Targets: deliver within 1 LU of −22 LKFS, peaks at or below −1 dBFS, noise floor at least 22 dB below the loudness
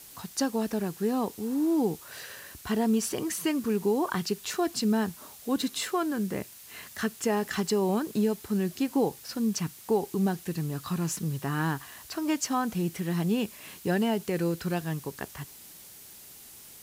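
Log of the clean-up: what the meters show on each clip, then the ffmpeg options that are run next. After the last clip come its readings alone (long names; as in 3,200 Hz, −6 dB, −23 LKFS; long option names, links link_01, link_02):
background noise floor −49 dBFS; target noise floor −52 dBFS; integrated loudness −29.5 LKFS; sample peak −15.5 dBFS; target loudness −22.0 LKFS
→ -af "afftdn=noise_reduction=6:noise_floor=-49"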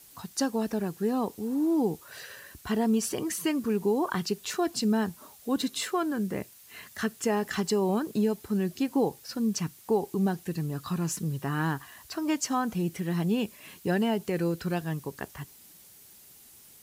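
background noise floor −54 dBFS; integrated loudness −29.5 LKFS; sample peak −15.5 dBFS; target loudness −22.0 LKFS
→ -af "volume=7.5dB"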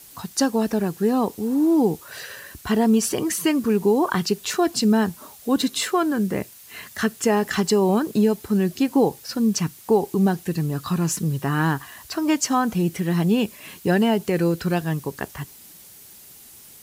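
integrated loudness −22.0 LKFS; sample peak −8.0 dBFS; background noise floor −46 dBFS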